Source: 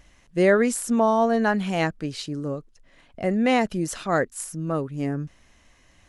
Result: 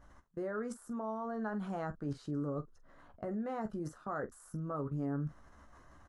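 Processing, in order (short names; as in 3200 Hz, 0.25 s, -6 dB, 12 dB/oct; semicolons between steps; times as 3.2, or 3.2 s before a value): reverse; compressor 10:1, threshold -32 dBFS, peak gain reduction 18.5 dB; reverse; resonant high shelf 1800 Hz -10 dB, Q 3; level quantiser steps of 21 dB; early reflections 14 ms -7.5 dB, 46 ms -15 dB; gain +4 dB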